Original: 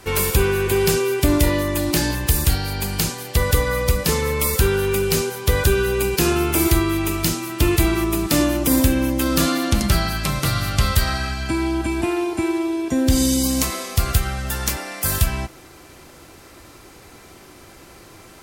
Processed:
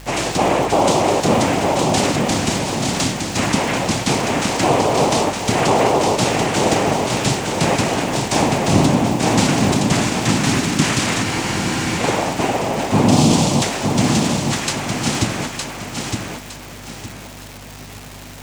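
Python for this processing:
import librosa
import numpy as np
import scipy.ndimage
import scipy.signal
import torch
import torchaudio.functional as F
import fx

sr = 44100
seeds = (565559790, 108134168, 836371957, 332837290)

p1 = x + 0.39 * np.pad(x, (int(7.4 * sr / 1000.0), 0))[:len(x)]
p2 = fx.rider(p1, sr, range_db=10, speed_s=2.0)
p3 = p1 + (p2 * librosa.db_to_amplitude(-3.0))
p4 = fx.noise_vocoder(p3, sr, seeds[0], bands=4)
p5 = fx.add_hum(p4, sr, base_hz=50, snr_db=19)
p6 = fx.dmg_crackle(p5, sr, seeds[1], per_s=390.0, level_db=-24.0)
p7 = p6 + fx.echo_feedback(p6, sr, ms=912, feedback_pct=32, wet_db=-4.5, dry=0)
p8 = fx.spec_freeze(p7, sr, seeds[2], at_s=11.27, hold_s=0.72)
y = p8 * librosa.db_to_amplitude(-2.5)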